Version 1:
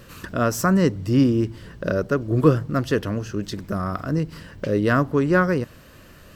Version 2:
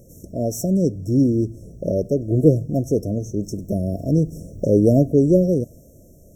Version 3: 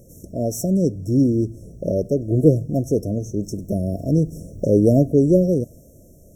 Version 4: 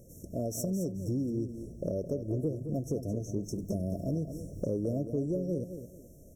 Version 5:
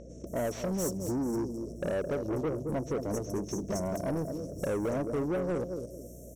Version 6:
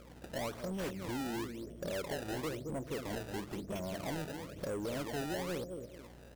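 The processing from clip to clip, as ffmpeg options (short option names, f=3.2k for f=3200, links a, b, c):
-af "afftfilt=real='re*(1-between(b*sr/4096,700,5400))':imag='im*(1-between(b*sr/4096,700,5400))':win_size=4096:overlap=0.75,dynaudnorm=f=300:g=9:m=11.5dB,volume=-1dB"
-af "equalizer=f=10k:w=3.2:g=3.5"
-af "acompressor=threshold=-23dB:ratio=6,aecho=1:1:216|432|648:0.335|0.0904|0.0244,volume=-6.5dB"
-filter_complex "[0:a]asplit=2[a][b];[b]highpass=f=720:p=1,volume=24dB,asoftclip=type=tanh:threshold=-19dB[c];[a][c]amix=inputs=2:normalize=0,lowpass=f=5.2k:p=1,volume=-6dB,aeval=exprs='val(0)+0.00562*(sin(2*PI*60*n/s)+sin(2*PI*2*60*n/s)/2+sin(2*PI*3*60*n/s)/3+sin(2*PI*4*60*n/s)/4+sin(2*PI*5*60*n/s)/5)':c=same,acrossover=split=5100[d][e];[e]adelay=270[f];[d][f]amix=inputs=2:normalize=0,volume=-4dB"
-af "acrusher=samples=23:mix=1:aa=0.000001:lfo=1:lforange=36.8:lforate=1,volume=-7dB"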